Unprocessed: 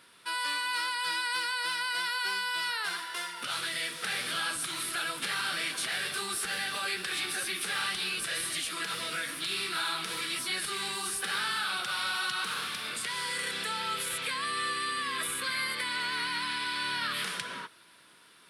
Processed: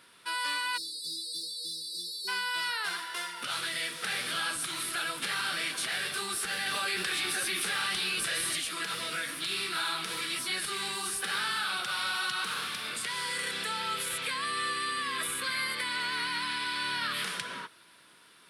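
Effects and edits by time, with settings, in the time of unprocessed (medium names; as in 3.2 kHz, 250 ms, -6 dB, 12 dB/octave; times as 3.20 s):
0.77–2.28 s: spectral selection erased 490–3500 Hz
6.66–8.56 s: level flattener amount 70%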